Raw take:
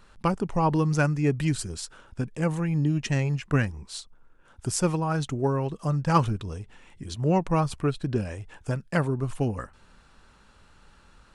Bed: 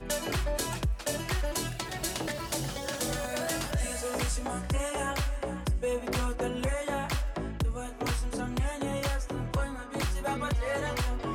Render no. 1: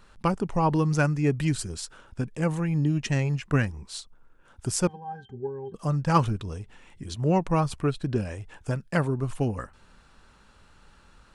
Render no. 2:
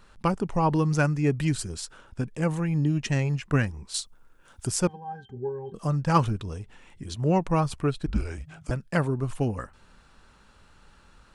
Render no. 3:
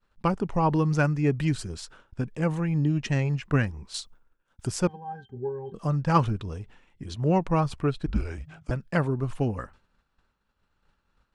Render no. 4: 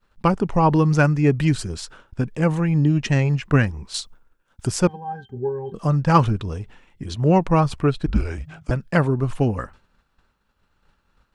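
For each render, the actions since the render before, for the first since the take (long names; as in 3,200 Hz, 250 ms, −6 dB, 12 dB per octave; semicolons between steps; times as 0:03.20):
0:04.87–0:05.74: resonances in every octave G, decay 0.11 s
0:03.94–0:04.67: high-shelf EQ 3,500 Hz +10.5 dB; 0:05.34–0:05.87: double-tracking delay 24 ms −6 dB; 0:08.06–0:08.71: frequency shifter −170 Hz
downward expander −43 dBFS; parametric band 9,800 Hz −8.5 dB 1.3 octaves
level +6.5 dB; brickwall limiter −3 dBFS, peak gain reduction 1 dB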